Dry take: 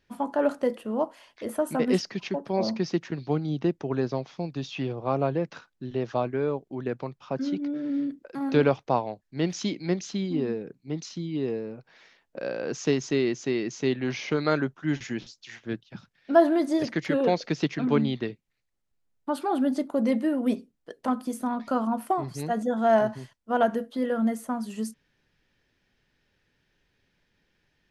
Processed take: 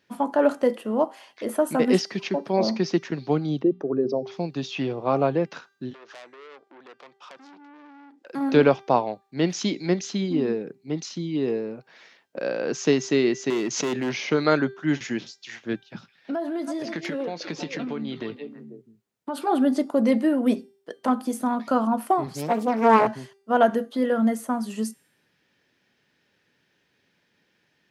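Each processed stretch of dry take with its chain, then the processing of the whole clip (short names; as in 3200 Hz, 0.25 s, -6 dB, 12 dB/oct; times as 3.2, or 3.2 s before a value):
3.62–4.32 formant sharpening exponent 2 + notches 60/120/180/240 Hz
5.93–8.26 compressor 3:1, threshold -42 dBFS + BPF 440–7600 Hz + core saturation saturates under 3500 Hz
13.5–14.16 hard clip -25.5 dBFS + backwards sustainer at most 66 dB/s
15.81–19.47 delay with a stepping band-pass 0.162 s, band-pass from 2900 Hz, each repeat -1.4 oct, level -11 dB + compressor 12:1, threshold -30 dBFS + doubler 18 ms -13 dB
22.26–23.07 HPF 110 Hz + Doppler distortion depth 0.69 ms
whole clip: HPF 160 Hz 12 dB/oct; de-hum 394 Hz, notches 35; gain +4.5 dB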